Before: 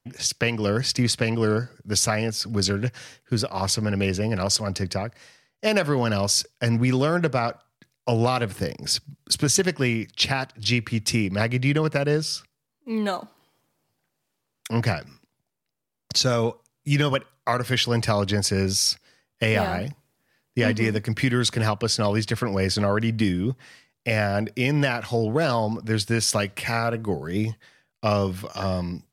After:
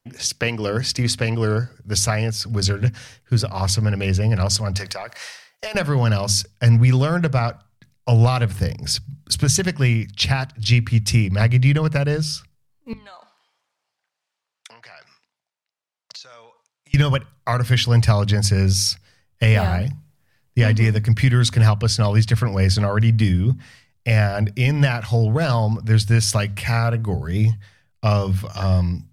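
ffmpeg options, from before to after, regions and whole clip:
-filter_complex "[0:a]asettb=1/sr,asplit=3[a][b][c];[a]atrim=end=4.774[d];[b]atrim=start=4.77:end=5.75,asetpts=PTS-STARTPTS,afade=t=in:d=0.004:c=qsin,afade=t=out:st=0.976:d=0.004:c=qsin,highpass=610,acompressor=threshold=-39dB:ratio=12:attack=3.2:release=140:knee=1:detection=peak,aeval=exprs='0.119*sin(PI/2*3.16*val(0)/0.119)':c=same[e];[c]atrim=start=5.746[f];[d][e]acrossfade=d=0.004:c1=hsin:c2=qsin[g];[g][f]acrossfade=d=0.004:c1=qsin:c2=hsin,asettb=1/sr,asplit=3[h][i][j];[h]atrim=end=12.934[k];[i]atrim=start=12.93:end=16.94,asetpts=PTS-STARTPTS,afade=t=in:d=0.004:c=qsin,afade=t=out:st=4.006:d=0.004:c=qsin,acompressor=threshold=-34dB:ratio=16:attack=3.2:release=140:knee=1:detection=peak,highpass=720,lowpass=6.2k[l];[j]atrim=start=16.936[m];[k][l]acrossfade=d=0.004:c1=hsin:c2=qsin[n];[n][m]acrossfade=d=0.004:c1=qsin:c2=hsin,bandreject=f=50:t=h:w=6,bandreject=f=100:t=h:w=6,bandreject=f=150:t=h:w=6,bandreject=f=200:t=h:w=6,bandreject=f=250:t=h:w=6,asubboost=boost=8.5:cutoff=100,volume=1.5dB"

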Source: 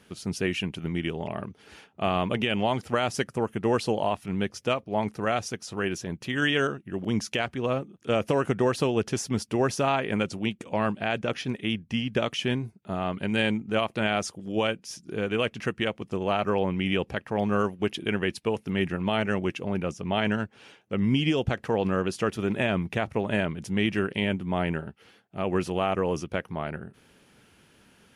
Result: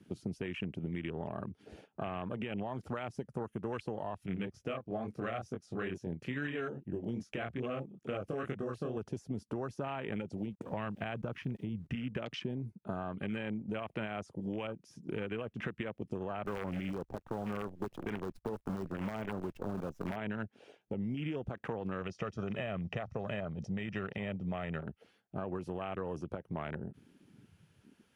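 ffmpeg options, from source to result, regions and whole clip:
-filter_complex "[0:a]asettb=1/sr,asplit=3[a][b][c];[a]atrim=end=4.264[d];[b]atrim=start=4.26:end=8.97,asetpts=PTS-STARTPTS,afade=t=in:d=0.004:c=qsin,afade=t=out:st=4.706:d=0.004:c=qsin,flanger=delay=20:depth=6.4:speed=2.3,asuperstop=centerf=930:order=12:qfactor=5[e];[c]atrim=start=8.966[f];[d][e]acrossfade=d=0.004:c1=hsin:c2=qsin[g];[g][f]acrossfade=d=0.004:c1=qsin:c2=hsin,asettb=1/sr,asplit=3[h][i][j];[h]atrim=end=10.374[k];[i]atrim=start=10.37:end=11.95,asetpts=PTS-STARTPTS,afade=t=in:d=0.004:c=qsin,afade=t=out:st=1.576:d=0.004:c=qsin,asubboost=boost=6:cutoff=190,aeval=exprs='val(0)*gte(abs(val(0)),0.00299)':c=same[l];[j]atrim=start=11.946[m];[k][l]acrossfade=d=0.004:c1=hsin:c2=qsin[n];[n][m]acrossfade=d=0.004:c1=qsin:c2=hsin,asettb=1/sr,asplit=3[o][p][q];[o]atrim=end=16.464[r];[p]atrim=start=16.46:end=20.16,asetpts=PTS-STARTPTS,afade=t=in:d=0.004:c=qsin,afade=t=out:st=3.696:d=0.004:c=qsin,aeval=exprs='(mod(5.31*val(0)+1,2)-1)/5.31':c=same,acrusher=bits=6:dc=4:mix=0:aa=0.000001[s];[q]atrim=start=20.156[t];[r][s]acrossfade=d=0.004:c1=hsin:c2=qsin[u];[u][t]acrossfade=d=0.004:c1=qsin:c2=hsin,asettb=1/sr,asplit=3[v][w][x];[v]atrim=end=22.014[y];[w]atrim=start=22.01:end=24.81,asetpts=PTS-STARTPTS,afade=t=in:d=0.004:c=qsin,afade=t=out:st=2.796:d=0.004:c=qsin,lowpass=f=5.7k:t=q:w=3.7,aecho=1:1:1.6:0.53,atrim=end_sample=123480[z];[x]atrim=start=24.806[aa];[y][z]acrossfade=d=0.004:c1=hsin:c2=qsin[ab];[ab][aa]acrossfade=d=0.004:c1=qsin:c2=hsin,alimiter=limit=-23dB:level=0:latency=1:release=250,acrossover=split=110|1700[ac][ad][ae];[ac]acompressor=threshold=-54dB:ratio=4[af];[ad]acompressor=threshold=-40dB:ratio=4[ag];[ae]acompressor=threshold=-48dB:ratio=4[ah];[af][ag][ah]amix=inputs=3:normalize=0,afwtdn=0.00447,volume=3.5dB"

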